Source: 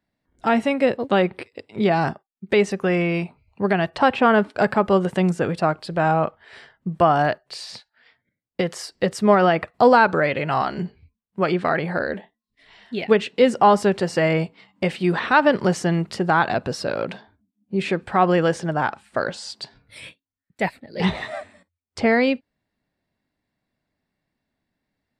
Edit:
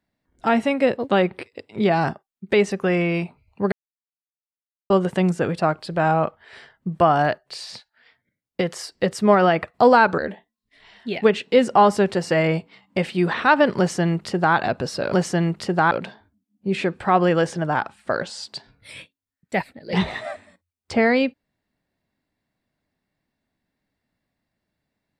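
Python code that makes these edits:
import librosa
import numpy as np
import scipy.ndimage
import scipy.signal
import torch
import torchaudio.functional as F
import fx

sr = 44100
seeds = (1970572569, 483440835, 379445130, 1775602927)

y = fx.edit(x, sr, fx.silence(start_s=3.72, length_s=1.18),
    fx.cut(start_s=10.18, length_s=1.86),
    fx.duplicate(start_s=15.63, length_s=0.79, to_s=16.98), tone=tone)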